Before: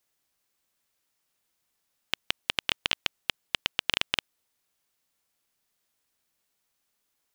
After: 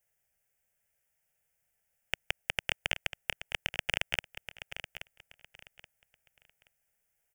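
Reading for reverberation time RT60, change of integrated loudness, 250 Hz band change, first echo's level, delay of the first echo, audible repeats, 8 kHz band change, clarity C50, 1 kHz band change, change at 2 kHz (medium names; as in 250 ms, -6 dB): no reverb, -5.5 dB, -6.5 dB, -11.5 dB, 827 ms, 2, -3.5 dB, no reverb, -4.5 dB, -1.5 dB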